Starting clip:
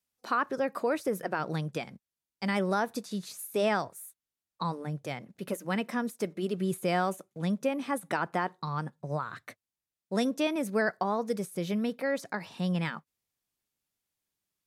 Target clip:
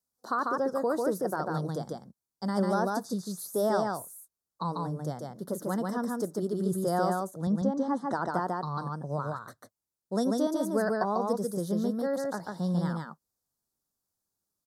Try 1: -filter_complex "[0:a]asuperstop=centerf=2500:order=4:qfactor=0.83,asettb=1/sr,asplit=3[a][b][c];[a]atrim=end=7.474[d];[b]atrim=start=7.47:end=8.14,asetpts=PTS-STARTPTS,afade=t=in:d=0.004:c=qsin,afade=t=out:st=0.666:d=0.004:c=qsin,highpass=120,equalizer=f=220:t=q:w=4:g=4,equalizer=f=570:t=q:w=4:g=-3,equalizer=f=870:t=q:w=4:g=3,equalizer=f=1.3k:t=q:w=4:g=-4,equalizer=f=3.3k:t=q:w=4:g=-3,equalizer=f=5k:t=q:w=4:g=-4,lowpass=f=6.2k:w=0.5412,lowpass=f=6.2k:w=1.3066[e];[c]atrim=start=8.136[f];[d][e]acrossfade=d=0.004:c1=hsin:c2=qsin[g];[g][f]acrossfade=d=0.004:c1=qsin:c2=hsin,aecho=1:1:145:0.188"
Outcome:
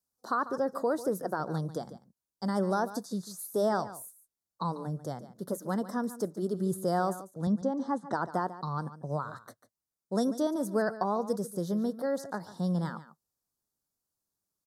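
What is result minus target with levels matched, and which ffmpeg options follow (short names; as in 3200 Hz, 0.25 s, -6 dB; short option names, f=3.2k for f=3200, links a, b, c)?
echo-to-direct -12 dB
-filter_complex "[0:a]asuperstop=centerf=2500:order=4:qfactor=0.83,asettb=1/sr,asplit=3[a][b][c];[a]atrim=end=7.474[d];[b]atrim=start=7.47:end=8.14,asetpts=PTS-STARTPTS,afade=t=in:d=0.004:c=qsin,afade=t=out:st=0.666:d=0.004:c=qsin,highpass=120,equalizer=f=220:t=q:w=4:g=4,equalizer=f=570:t=q:w=4:g=-3,equalizer=f=870:t=q:w=4:g=3,equalizer=f=1.3k:t=q:w=4:g=-4,equalizer=f=3.3k:t=q:w=4:g=-3,equalizer=f=5k:t=q:w=4:g=-4,lowpass=f=6.2k:w=0.5412,lowpass=f=6.2k:w=1.3066[e];[c]atrim=start=8.136[f];[d][e]acrossfade=d=0.004:c1=hsin:c2=qsin[g];[g][f]acrossfade=d=0.004:c1=qsin:c2=hsin,aecho=1:1:145:0.75"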